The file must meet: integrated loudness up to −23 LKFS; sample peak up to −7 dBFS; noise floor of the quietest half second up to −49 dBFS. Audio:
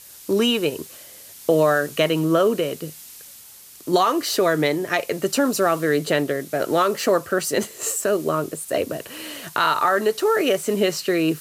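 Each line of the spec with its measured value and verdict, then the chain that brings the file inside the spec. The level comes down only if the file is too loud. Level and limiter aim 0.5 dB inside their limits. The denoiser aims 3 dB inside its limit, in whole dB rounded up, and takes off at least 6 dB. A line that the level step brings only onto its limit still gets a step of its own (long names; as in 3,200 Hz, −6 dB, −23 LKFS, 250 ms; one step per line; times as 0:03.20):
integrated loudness −21.0 LKFS: out of spec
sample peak −6.0 dBFS: out of spec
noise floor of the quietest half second −45 dBFS: out of spec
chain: broadband denoise 6 dB, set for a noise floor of −45 dBFS
level −2.5 dB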